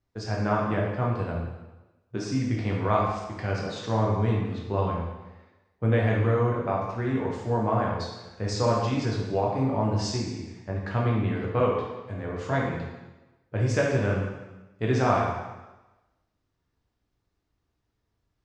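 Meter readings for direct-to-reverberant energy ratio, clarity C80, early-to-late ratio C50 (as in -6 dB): -3.5 dB, 4.5 dB, 1.5 dB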